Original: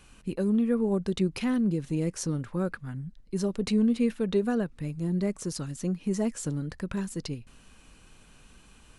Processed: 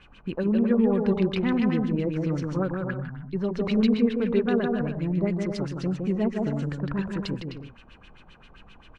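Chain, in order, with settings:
bouncing-ball delay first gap 160 ms, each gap 0.6×, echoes 5
auto-filter low-pass sine 7.6 Hz 720–3,600 Hz
level +1 dB

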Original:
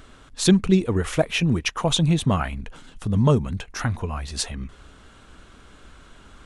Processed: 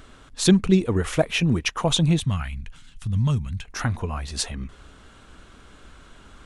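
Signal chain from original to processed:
0:02.20–0:03.65: drawn EQ curve 120 Hz 0 dB, 440 Hz −19 dB, 2,300 Hz −2 dB

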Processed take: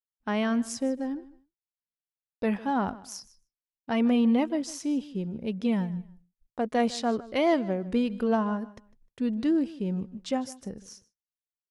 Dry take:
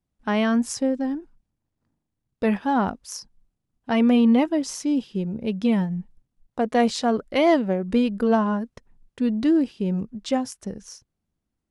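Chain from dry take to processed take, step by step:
repeating echo 153 ms, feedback 23%, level −19 dB
downward expander −48 dBFS
level −5.5 dB

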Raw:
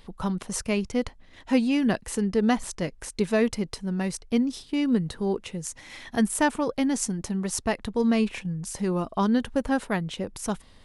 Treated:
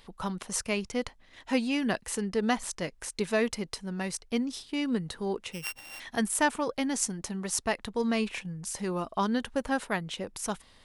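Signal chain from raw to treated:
0:05.52–0:06.00: samples sorted by size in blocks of 16 samples
low-shelf EQ 460 Hz −8.5 dB

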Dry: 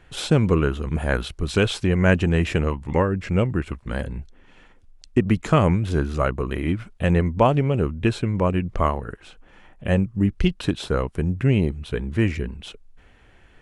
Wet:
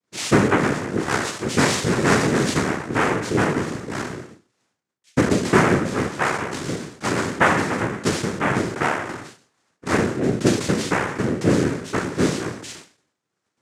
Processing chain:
peak hold with a decay on every bin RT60 0.76 s
downward expander −34 dBFS
0:06.07–0:08.45: low-shelf EQ 190 Hz −10 dB
cochlear-implant simulation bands 3

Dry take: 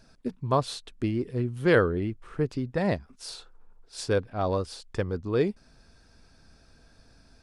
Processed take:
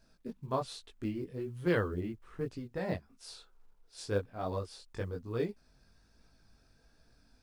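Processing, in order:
multi-voice chorus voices 2, 1.2 Hz, delay 20 ms, depth 3 ms
log-companded quantiser 8 bits
level −6 dB

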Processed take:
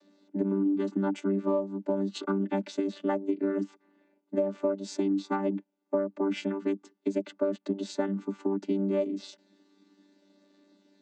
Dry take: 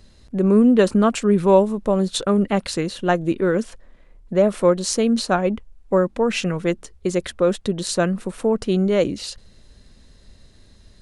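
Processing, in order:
channel vocoder with a chord as carrier bare fifth, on G3
Butterworth high-pass 230 Hz 36 dB per octave
downward compressor 10 to 1, threshold −24 dBFS, peak gain reduction 14.5 dB

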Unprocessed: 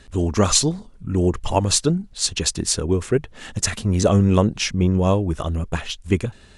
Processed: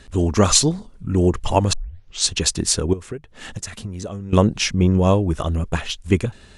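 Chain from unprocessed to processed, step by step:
0:01.73: tape start 0.54 s
0:02.93–0:04.33: downward compressor 16 to 1, threshold −29 dBFS, peak gain reduction 18.5 dB
level +2 dB

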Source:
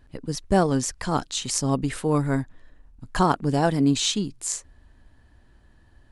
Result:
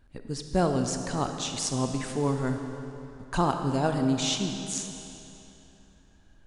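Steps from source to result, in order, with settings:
change of speed 0.946×
convolution reverb RT60 3.1 s, pre-delay 5 ms, DRR 5 dB
level −5 dB

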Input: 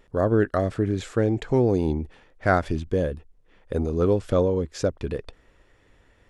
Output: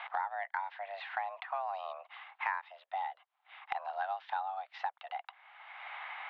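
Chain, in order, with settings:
single-sideband voice off tune +290 Hz 550–3,400 Hz
multiband upward and downward compressor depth 100%
level −7.5 dB

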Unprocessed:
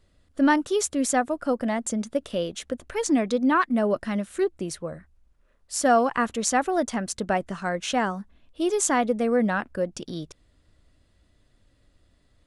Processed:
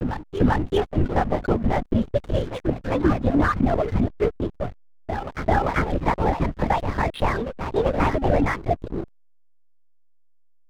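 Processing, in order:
gliding playback speed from 96% → 137%
reverb reduction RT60 0.56 s
dynamic equaliser 480 Hz, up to −5 dB, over −38 dBFS, Q 2.9
downward compressor 6 to 1, threshold −24 dBFS, peak gain reduction 9 dB
linear-prediction vocoder at 8 kHz whisper
high-shelf EQ 2,100 Hz −7 dB
backwards echo 392 ms −7.5 dB
downward expander −50 dBFS
slack as between gear wheels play −37 dBFS
level +8.5 dB

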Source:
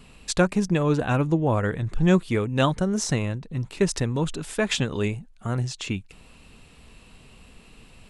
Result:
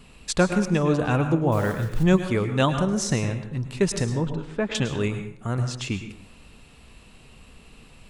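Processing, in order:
0:01.52–0:02.05: one scale factor per block 5 bits
0:04.04–0:04.75: head-to-tape spacing loss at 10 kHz 29 dB
dense smooth reverb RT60 0.6 s, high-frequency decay 0.7×, pre-delay 95 ms, DRR 7.5 dB

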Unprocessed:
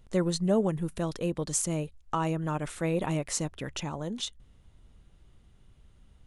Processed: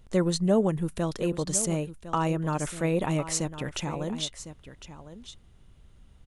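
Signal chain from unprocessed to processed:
single-tap delay 1,055 ms −13.5 dB
level +2.5 dB

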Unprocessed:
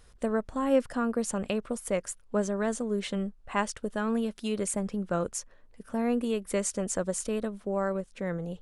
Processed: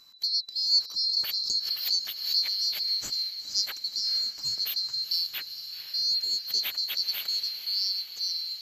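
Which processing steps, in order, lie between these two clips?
neighbouring bands swapped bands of 4,000 Hz
feedback delay with all-pass diffusion 475 ms, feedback 65%, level −11 dB
0:01.09–0:03.11: background raised ahead of every attack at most 74 dB per second

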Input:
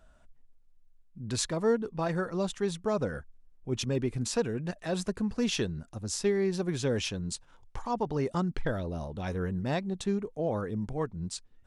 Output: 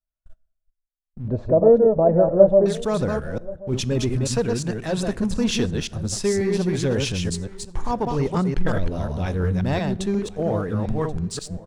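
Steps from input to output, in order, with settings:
delay that plays each chunk backwards 178 ms, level −4 dB
noise gate −49 dBFS, range −38 dB
low-shelf EQ 85 Hz +9.5 dB
leveller curve on the samples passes 1
0:01.28–0:02.66: low-pass with resonance 600 Hz, resonance Q 7.5
single-tap delay 1,081 ms −21 dB
dense smooth reverb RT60 1 s, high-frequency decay 0.6×, DRR 19.5 dB
level +2 dB

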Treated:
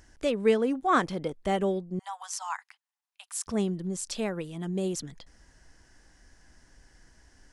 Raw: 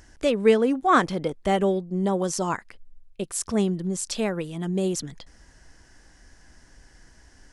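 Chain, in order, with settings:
0:01.99–0:03.47: Butterworth high-pass 760 Hz 72 dB per octave
level −5 dB

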